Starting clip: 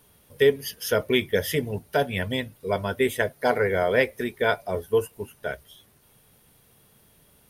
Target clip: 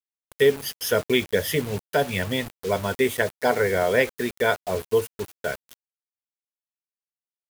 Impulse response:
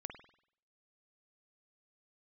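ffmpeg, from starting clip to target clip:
-filter_complex "[0:a]asplit=2[link_01][link_02];[link_02]acompressor=threshold=-34dB:ratio=16,volume=-2dB[link_03];[link_01][link_03]amix=inputs=2:normalize=0,highpass=frequency=52:poles=1,acrusher=bits=5:mix=0:aa=0.000001"

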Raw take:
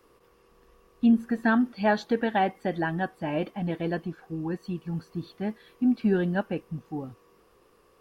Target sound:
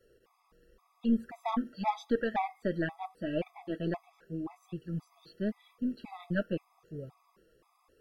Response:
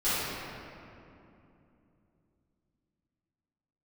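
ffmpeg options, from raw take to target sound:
-af "flanger=delay=1.6:depth=4.9:regen=-32:speed=0.86:shape=sinusoidal,aeval=exprs='0.2*(cos(1*acos(clip(val(0)/0.2,-1,1)))-cos(1*PI/2))+0.02*(cos(4*acos(clip(val(0)/0.2,-1,1)))-cos(4*PI/2))':channel_layout=same,afftfilt=real='re*gt(sin(2*PI*1.9*pts/sr)*(1-2*mod(floor(b*sr/1024/660),2)),0)':imag='im*gt(sin(2*PI*1.9*pts/sr)*(1-2*mod(floor(b*sr/1024/660),2)),0)':win_size=1024:overlap=0.75"

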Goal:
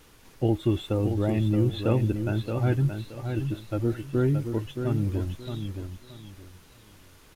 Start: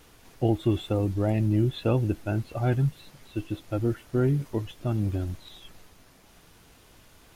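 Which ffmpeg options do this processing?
ffmpeg -i in.wav -af "equalizer=frequency=700:width=7.4:gain=-7,aecho=1:1:623|1246|1869:0.447|0.112|0.0279" out.wav

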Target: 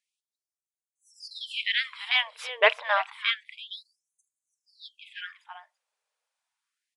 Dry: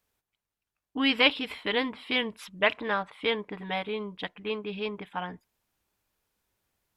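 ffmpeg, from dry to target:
ffmpeg -i in.wav -af "agate=range=-8dB:threshold=-52dB:ratio=16:detection=peak,aecho=1:1:334:0.2,aeval=exprs='0.473*(cos(1*acos(clip(val(0)/0.473,-1,1)))-cos(1*PI/2))+0.00531*(cos(4*acos(clip(val(0)/0.473,-1,1)))-cos(4*PI/2))':channel_layout=same,aresample=22050,aresample=44100,afftfilt=real='re*gte(b*sr/1024,420*pow(6300/420,0.5+0.5*sin(2*PI*0.29*pts/sr)))':imag='im*gte(b*sr/1024,420*pow(6300/420,0.5+0.5*sin(2*PI*0.29*pts/sr)))':win_size=1024:overlap=0.75,volume=4.5dB" out.wav

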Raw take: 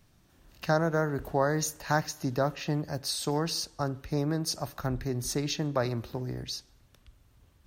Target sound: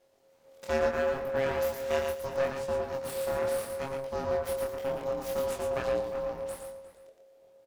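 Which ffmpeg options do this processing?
ffmpeg -i in.wav -filter_complex "[0:a]aeval=exprs='abs(val(0))':channel_layout=same,asplit=2[link_01][link_02];[link_02]aecho=0:1:114|228|342:0.596|0.101|0.0172[link_03];[link_01][link_03]amix=inputs=2:normalize=0,aeval=exprs='val(0)*sin(2*PI*540*n/s)':channel_layout=same,asplit=2[link_04][link_05];[link_05]adelay=355.7,volume=-12dB,highshelf=frequency=4000:gain=-8[link_06];[link_04][link_06]amix=inputs=2:normalize=0,flanger=delay=22.5:depth=3.9:speed=0.74,volume=1dB" out.wav

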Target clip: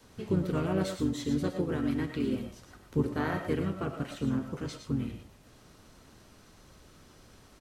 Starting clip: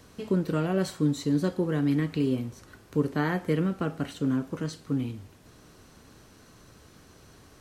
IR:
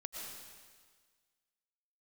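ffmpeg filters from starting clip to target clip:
-filter_complex "[0:a]adynamicequalizer=threshold=0.00794:dfrequency=100:dqfactor=0.79:tfrequency=100:tqfactor=0.79:attack=5:release=100:ratio=0.375:range=2.5:mode=cutabove:tftype=bell,asplit=3[link_01][link_02][link_03];[link_02]asetrate=22050,aresample=44100,atempo=2,volume=-7dB[link_04];[link_03]asetrate=37084,aresample=44100,atempo=1.18921,volume=-4dB[link_05];[link_01][link_04][link_05]amix=inputs=3:normalize=0[link_06];[1:a]atrim=start_sample=2205,afade=type=out:start_time=0.17:duration=0.01,atrim=end_sample=7938[link_07];[link_06][link_07]afir=irnorm=-1:irlink=0"

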